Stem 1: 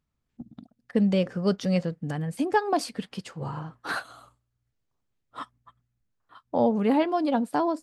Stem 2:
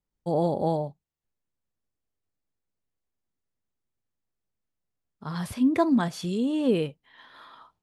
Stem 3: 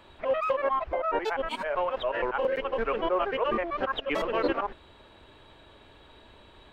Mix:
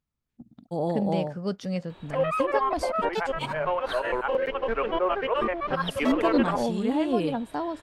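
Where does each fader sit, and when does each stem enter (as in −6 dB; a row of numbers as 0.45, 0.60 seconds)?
−5.5, −3.0, +1.5 decibels; 0.00, 0.45, 1.90 seconds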